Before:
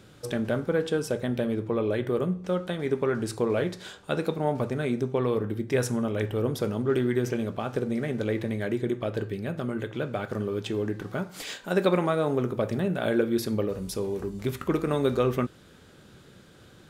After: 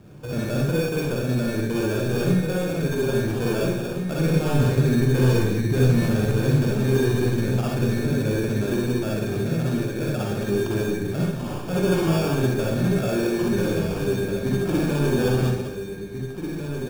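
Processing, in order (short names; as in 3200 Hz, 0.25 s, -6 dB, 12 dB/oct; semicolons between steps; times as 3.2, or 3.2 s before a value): reverse delay 0.123 s, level -9 dB; soft clip -23.5 dBFS, distortion -12 dB; 4.18–6.25 low shelf 160 Hz +8 dB; outdoor echo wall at 290 m, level -7 dB; sample-and-hold 22×; low shelf 370 Hz +9.5 dB; reverb RT60 0.50 s, pre-delay 43 ms, DRR -3 dB; gain -3.5 dB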